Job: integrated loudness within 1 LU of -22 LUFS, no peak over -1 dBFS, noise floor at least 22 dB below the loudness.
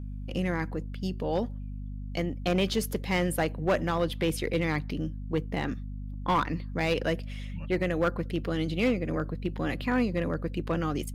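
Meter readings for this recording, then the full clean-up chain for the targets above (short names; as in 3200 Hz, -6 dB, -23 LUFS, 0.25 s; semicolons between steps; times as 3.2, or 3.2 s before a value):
clipped 0.7%; flat tops at -19.0 dBFS; hum 50 Hz; harmonics up to 250 Hz; hum level -34 dBFS; loudness -30.0 LUFS; peak -19.0 dBFS; loudness target -22.0 LUFS
-> clip repair -19 dBFS; de-hum 50 Hz, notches 5; gain +8 dB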